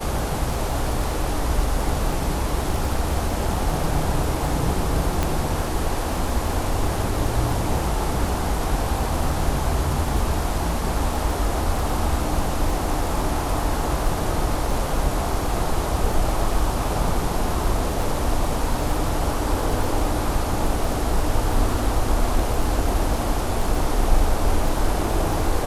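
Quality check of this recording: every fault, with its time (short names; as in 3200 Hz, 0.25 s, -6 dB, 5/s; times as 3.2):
crackle 16/s -25 dBFS
5.23 pop -7 dBFS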